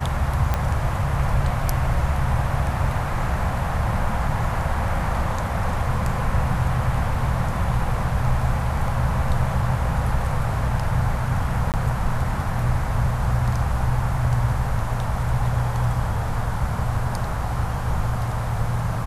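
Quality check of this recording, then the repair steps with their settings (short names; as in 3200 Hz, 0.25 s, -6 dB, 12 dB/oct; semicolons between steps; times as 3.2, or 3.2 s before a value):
0.54 pop -9 dBFS
11.72–11.74 gap 18 ms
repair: de-click; interpolate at 11.72, 18 ms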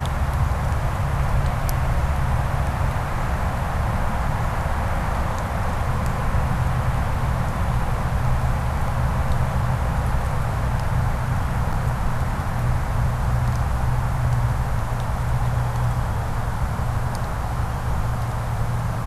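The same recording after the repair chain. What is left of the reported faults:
none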